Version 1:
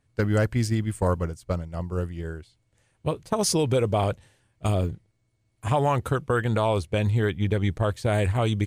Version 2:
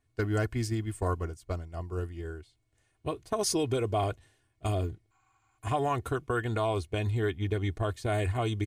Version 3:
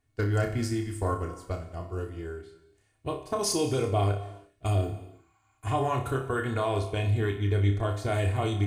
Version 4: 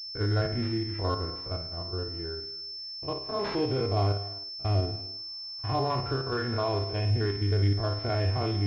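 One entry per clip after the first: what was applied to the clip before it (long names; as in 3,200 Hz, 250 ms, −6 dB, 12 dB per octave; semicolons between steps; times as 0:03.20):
healed spectral selection 0:05.14–0:05.55, 740–7,700 Hz after; comb filter 2.8 ms, depth 61%; level −6.5 dB
on a send: flutter between parallel walls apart 5.1 metres, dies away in 0.3 s; on the sum: reverb whose tail is shaped and stops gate 400 ms falling, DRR 9.5 dB
spectrum averaged block by block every 50 ms; switching amplifier with a slow clock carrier 5,300 Hz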